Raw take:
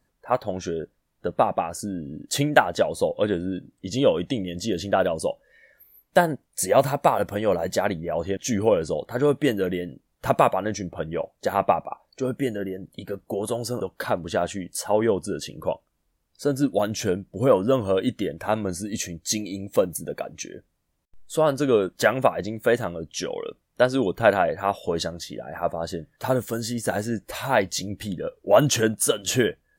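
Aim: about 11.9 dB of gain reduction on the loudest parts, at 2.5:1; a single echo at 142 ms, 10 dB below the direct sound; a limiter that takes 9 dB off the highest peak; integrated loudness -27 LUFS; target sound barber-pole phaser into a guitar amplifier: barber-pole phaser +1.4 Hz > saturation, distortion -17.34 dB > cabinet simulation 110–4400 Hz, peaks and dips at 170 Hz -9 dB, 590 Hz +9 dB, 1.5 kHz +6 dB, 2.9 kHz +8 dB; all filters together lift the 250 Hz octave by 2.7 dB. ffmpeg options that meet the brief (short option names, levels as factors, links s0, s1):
-filter_complex "[0:a]equalizer=f=250:t=o:g=4.5,acompressor=threshold=0.0316:ratio=2.5,alimiter=limit=0.0841:level=0:latency=1,aecho=1:1:142:0.316,asplit=2[s0][s1];[s1]afreqshift=1.4[s2];[s0][s2]amix=inputs=2:normalize=1,asoftclip=threshold=0.0422,highpass=110,equalizer=f=170:t=q:w=4:g=-9,equalizer=f=590:t=q:w=4:g=9,equalizer=f=1500:t=q:w=4:g=6,equalizer=f=2900:t=q:w=4:g=8,lowpass=f=4400:w=0.5412,lowpass=f=4400:w=1.3066,volume=2.66"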